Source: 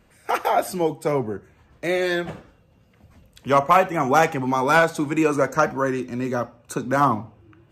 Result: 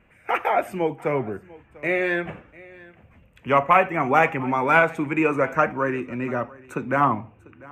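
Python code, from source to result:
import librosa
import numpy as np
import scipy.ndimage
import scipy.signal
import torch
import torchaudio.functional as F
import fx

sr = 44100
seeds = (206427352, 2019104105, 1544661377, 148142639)

y = fx.high_shelf_res(x, sr, hz=3300.0, db=-10.5, q=3.0)
y = y + 10.0 ** (-22.0 / 20.0) * np.pad(y, (int(695 * sr / 1000.0), 0))[:len(y)]
y = y * 10.0 ** (-2.0 / 20.0)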